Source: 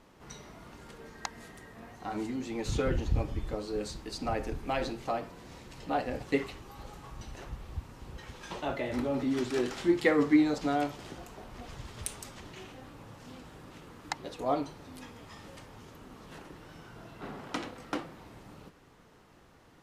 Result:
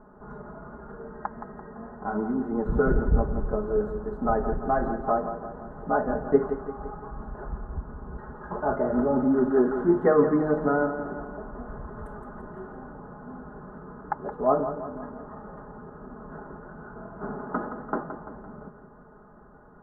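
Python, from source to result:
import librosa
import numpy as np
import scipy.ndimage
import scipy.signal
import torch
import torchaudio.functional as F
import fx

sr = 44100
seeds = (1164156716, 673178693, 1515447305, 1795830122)

y = scipy.signal.sosfilt(scipy.signal.ellip(4, 1.0, 40, 1500.0, 'lowpass', fs=sr, output='sos'), x)
y = y + 0.71 * np.pad(y, (int(4.8 * sr / 1000.0), 0))[:len(y)]
y = fx.echo_feedback(y, sr, ms=170, feedback_pct=53, wet_db=-10)
y = F.gain(torch.from_numpy(y), 6.5).numpy()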